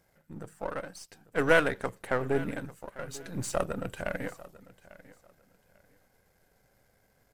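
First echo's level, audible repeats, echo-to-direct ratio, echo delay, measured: -19.0 dB, 2, -19.0 dB, 0.846 s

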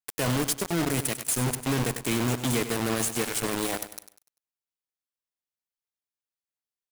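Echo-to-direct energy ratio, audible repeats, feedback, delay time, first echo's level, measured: -11.0 dB, 3, 36%, 98 ms, -11.5 dB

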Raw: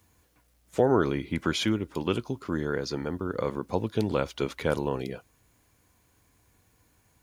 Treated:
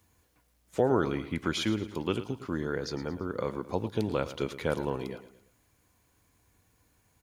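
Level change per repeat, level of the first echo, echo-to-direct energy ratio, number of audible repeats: -7.0 dB, -14.0 dB, -13.0 dB, 3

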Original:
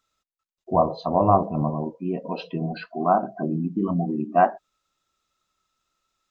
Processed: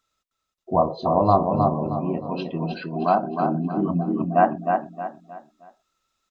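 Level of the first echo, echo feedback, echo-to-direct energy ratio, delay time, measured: -4.5 dB, 35%, -4.0 dB, 0.312 s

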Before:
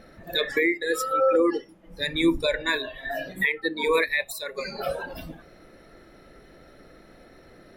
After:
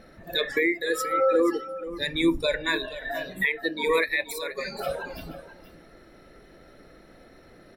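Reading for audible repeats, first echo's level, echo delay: 1, -14.0 dB, 0.478 s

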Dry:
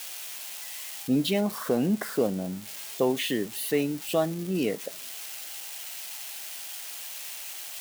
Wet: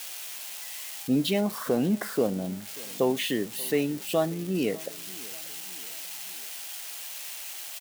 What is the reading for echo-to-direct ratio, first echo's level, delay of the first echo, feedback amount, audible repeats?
-21.0 dB, -22.0 dB, 0.587 s, 49%, 3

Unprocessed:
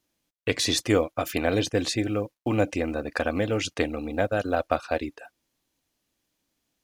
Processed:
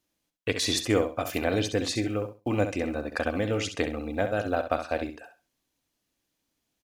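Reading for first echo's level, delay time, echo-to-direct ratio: -9.0 dB, 66 ms, -9.0 dB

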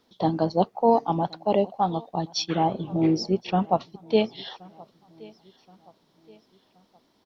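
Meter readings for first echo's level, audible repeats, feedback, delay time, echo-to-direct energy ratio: -24.0 dB, 2, 44%, 1.074 s, -23.0 dB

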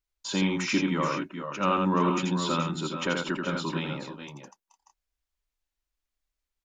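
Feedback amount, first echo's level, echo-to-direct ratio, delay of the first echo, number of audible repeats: no steady repeat, -4.0 dB, -2.5 dB, 84 ms, 2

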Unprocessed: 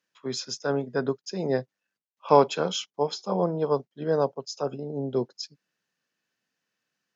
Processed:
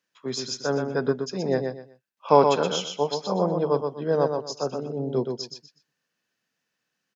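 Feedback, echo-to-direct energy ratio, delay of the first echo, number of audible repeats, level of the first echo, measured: 25%, -5.0 dB, 0.123 s, 3, -5.5 dB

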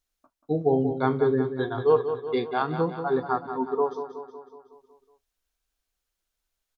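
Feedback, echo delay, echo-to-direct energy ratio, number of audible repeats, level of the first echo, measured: 57%, 0.185 s, -8.0 dB, 6, -9.5 dB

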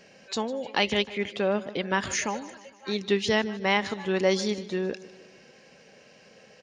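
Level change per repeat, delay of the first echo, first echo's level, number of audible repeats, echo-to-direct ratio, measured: -5.5 dB, 0.153 s, -18.0 dB, 4, -16.5 dB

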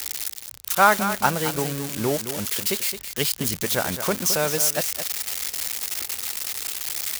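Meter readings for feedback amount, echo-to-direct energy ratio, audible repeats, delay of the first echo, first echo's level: no steady repeat, -10.5 dB, 1, 0.217 s, -10.5 dB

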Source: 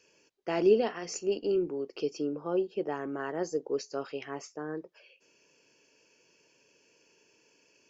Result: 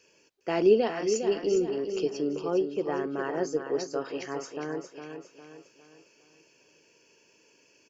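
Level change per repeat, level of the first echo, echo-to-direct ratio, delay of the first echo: -7.5 dB, -7.5 dB, -6.5 dB, 0.407 s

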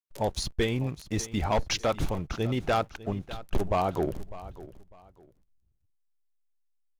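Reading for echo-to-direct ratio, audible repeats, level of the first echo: -16.5 dB, 2, -17.0 dB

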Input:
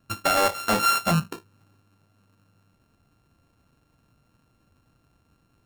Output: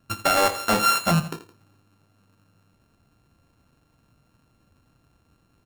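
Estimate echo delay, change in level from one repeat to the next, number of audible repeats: 83 ms, -7.5 dB, 2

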